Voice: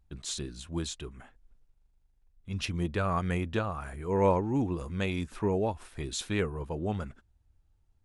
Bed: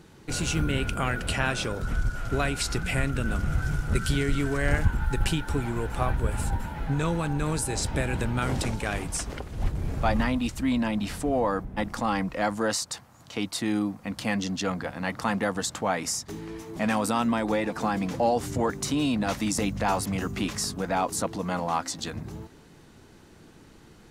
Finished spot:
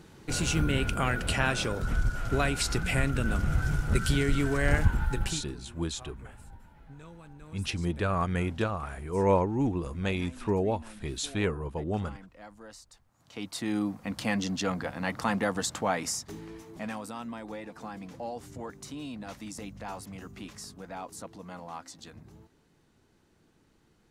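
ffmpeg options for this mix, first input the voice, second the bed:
ffmpeg -i stem1.wav -i stem2.wav -filter_complex "[0:a]adelay=5050,volume=1dB[link_01];[1:a]volume=20dB,afade=type=out:start_time=4.98:duration=0.54:silence=0.0841395,afade=type=in:start_time=13.05:duration=0.88:silence=0.0944061,afade=type=out:start_time=15.88:duration=1.17:silence=0.237137[link_02];[link_01][link_02]amix=inputs=2:normalize=0" out.wav

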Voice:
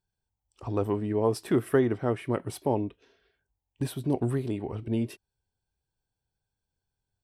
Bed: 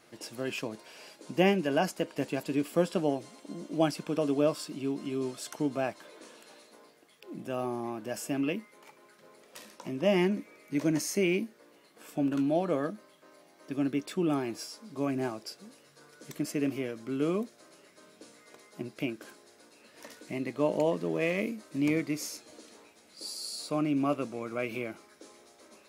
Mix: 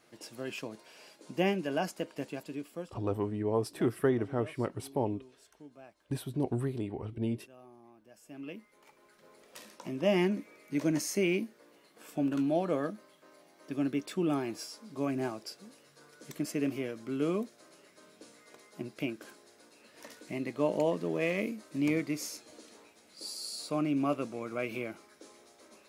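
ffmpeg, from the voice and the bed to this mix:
ffmpeg -i stem1.wav -i stem2.wav -filter_complex "[0:a]adelay=2300,volume=-4.5dB[link_01];[1:a]volume=15.5dB,afade=type=out:start_time=2.05:duration=0.95:silence=0.141254,afade=type=in:start_time=8.21:duration=1.25:silence=0.1[link_02];[link_01][link_02]amix=inputs=2:normalize=0" out.wav

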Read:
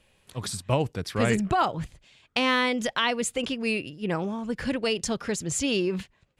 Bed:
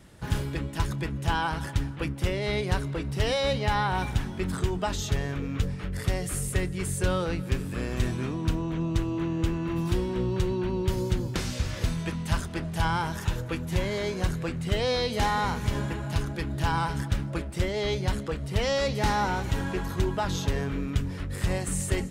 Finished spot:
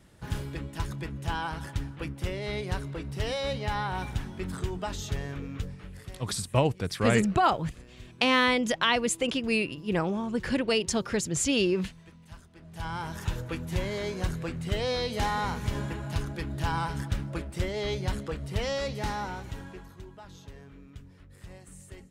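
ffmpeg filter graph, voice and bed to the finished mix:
ffmpeg -i stem1.wav -i stem2.wav -filter_complex "[0:a]adelay=5850,volume=0.5dB[link_01];[1:a]volume=13dB,afade=type=out:start_time=5.38:duration=0.84:silence=0.158489,afade=type=in:start_time=12.58:duration=0.71:silence=0.125893,afade=type=out:start_time=18.43:duration=1.56:silence=0.149624[link_02];[link_01][link_02]amix=inputs=2:normalize=0" out.wav

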